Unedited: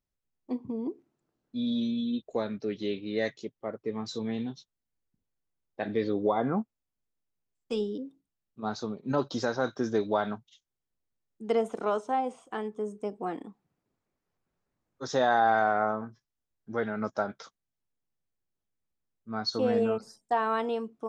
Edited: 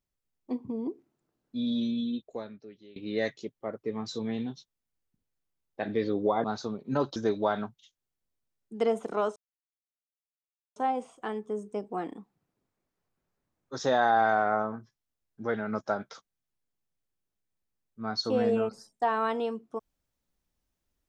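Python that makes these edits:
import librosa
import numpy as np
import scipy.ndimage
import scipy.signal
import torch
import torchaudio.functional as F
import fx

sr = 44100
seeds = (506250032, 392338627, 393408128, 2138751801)

y = fx.edit(x, sr, fx.fade_out_to(start_s=2.03, length_s=0.93, curve='qua', floor_db=-21.5),
    fx.cut(start_s=6.44, length_s=2.18),
    fx.cut(start_s=9.34, length_s=0.51),
    fx.insert_silence(at_s=12.05, length_s=1.4), tone=tone)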